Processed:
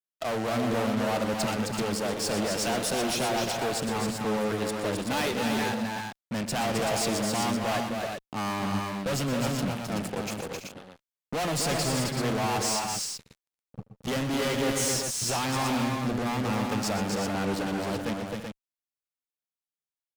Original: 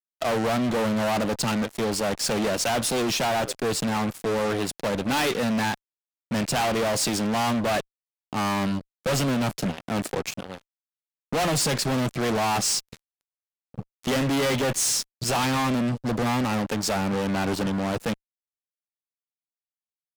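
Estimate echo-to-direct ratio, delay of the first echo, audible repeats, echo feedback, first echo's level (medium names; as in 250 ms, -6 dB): -1.5 dB, 122 ms, 4, no regular repeats, -13.0 dB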